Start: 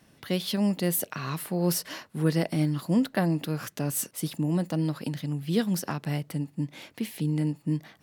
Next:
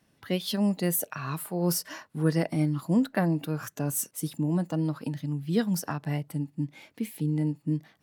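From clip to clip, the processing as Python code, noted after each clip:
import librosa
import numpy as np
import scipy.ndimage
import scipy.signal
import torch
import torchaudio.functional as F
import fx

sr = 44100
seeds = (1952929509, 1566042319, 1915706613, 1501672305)

y = fx.noise_reduce_blind(x, sr, reduce_db=8)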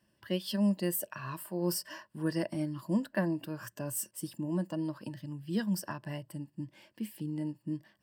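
y = fx.ripple_eq(x, sr, per_octave=1.3, db=10)
y = y * librosa.db_to_amplitude(-7.0)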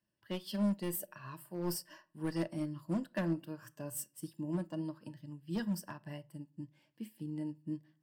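y = np.clip(x, -10.0 ** (-26.5 / 20.0), 10.0 ** (-26.5 / 20.0))
y = fx.room_shoebox(y, sr, seeds[0], volume_m3=420.0, walls='furnished', distance_m=0.45)
y = fx.upward_expand(y, sr, threshold_db=-52.0, expansion=1.5)
y = y * librosa.db_to_amplitude(-1.5)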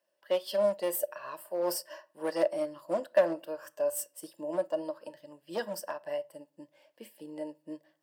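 y = fx.highpass_res(x, sr, hz=560.0, q=4.9)
y = y * librosa.db_to_amplitude(5.0)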